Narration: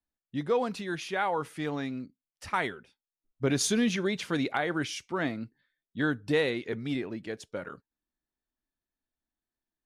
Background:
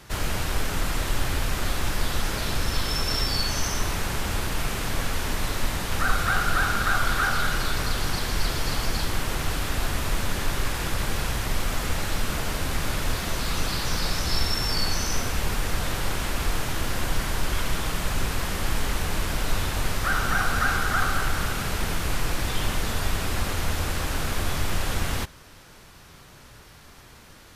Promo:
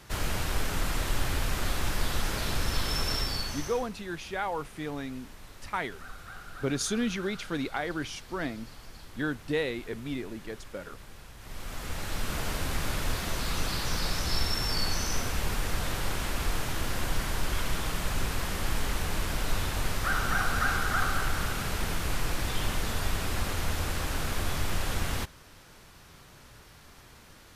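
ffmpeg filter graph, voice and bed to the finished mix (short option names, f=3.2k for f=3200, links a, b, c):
-filter_complex "[0:a]adelay=3200,volume=-3dB[a];[1:a]volume=14dB,afade=t=out:st=3.05:d=0.84:silence=0.125893,afade=t=in:st=11.37:d=1.08:silence=0.133352[b];[a][b]amix=inputs=2:normalize=0"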